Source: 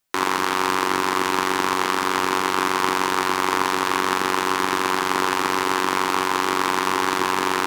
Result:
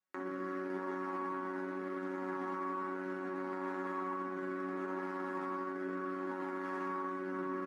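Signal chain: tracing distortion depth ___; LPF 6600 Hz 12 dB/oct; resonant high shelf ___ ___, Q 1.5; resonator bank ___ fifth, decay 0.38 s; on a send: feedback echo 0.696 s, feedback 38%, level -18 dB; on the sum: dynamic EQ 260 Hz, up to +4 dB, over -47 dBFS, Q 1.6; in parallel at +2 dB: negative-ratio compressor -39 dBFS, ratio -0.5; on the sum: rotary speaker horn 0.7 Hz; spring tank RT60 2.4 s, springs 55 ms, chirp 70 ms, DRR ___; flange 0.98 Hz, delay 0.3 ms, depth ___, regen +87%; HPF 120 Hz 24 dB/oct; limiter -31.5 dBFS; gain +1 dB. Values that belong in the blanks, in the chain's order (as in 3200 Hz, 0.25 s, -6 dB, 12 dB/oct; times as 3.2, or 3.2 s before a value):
0.25 ms, 2200 Hz, -9.5 dB, F#3, 5.5 dB, 9.8 ms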